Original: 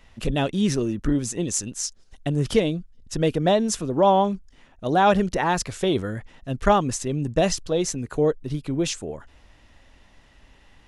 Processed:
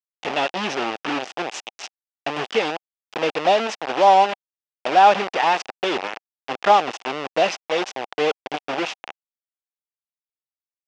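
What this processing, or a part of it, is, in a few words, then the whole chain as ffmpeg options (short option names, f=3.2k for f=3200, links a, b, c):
hand-held game console: -af "acrusher=bits=3:mix=0:aa=0.000001,highpass=420,equalizer=f=780:t=q:w=4:g=7,equalizer=f=2.7k:t=q:w=4:g=5,equalizer=f=4.2k:t=q:w=4:g=-5,lowpass=f=4.9k:w=0.5412,lowpass=f=4.9k:w=1.3066,volume=1dB"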